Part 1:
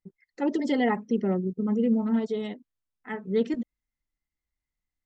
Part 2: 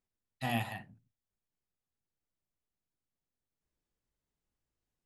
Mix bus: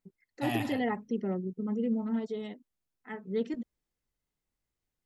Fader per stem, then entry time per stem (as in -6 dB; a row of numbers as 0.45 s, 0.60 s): -6.5 dB, 0.0 dB; 0.00 s, 0.00 s